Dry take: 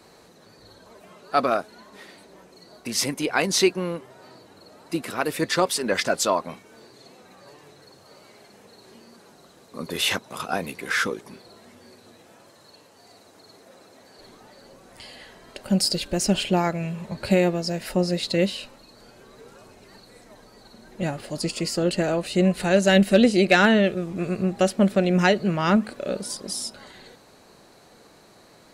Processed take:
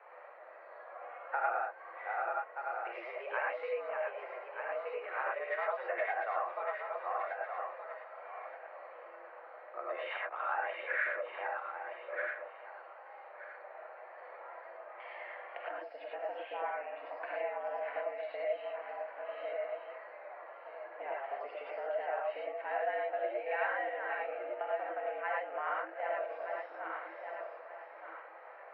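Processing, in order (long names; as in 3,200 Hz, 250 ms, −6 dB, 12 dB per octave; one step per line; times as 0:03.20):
feedback delay that plays each chunk backwards 611 ms, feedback 40%, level −10.5 dB
downward compressor 5 to 1, threshold −33 dBFS, peak gain reduction 19 dB
reverb whose tail is shaped and stops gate 130 ms rising, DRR −3 dB
single-sideband voice off tune +110 Hz 450–2,100 Hz
level −1.5 dB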